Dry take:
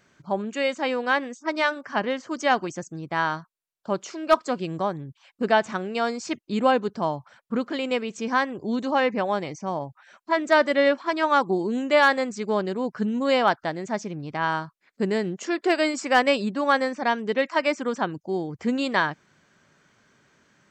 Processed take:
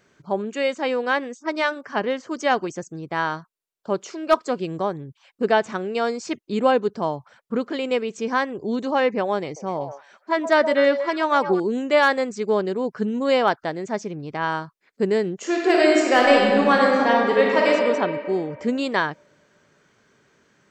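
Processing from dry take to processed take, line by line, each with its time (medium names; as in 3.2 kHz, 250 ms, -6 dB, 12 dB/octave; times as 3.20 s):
9.44–11.60 s: repeats whose band climbs or falls 122 ms, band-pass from 660 Hz, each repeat 1.4 oct, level -7 dB
15.36–17.70 s: reverb throw, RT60 2.2 s, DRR -2.5 dB
whole clip: peaking EQ 430 Hz +6 dB 0.57 oct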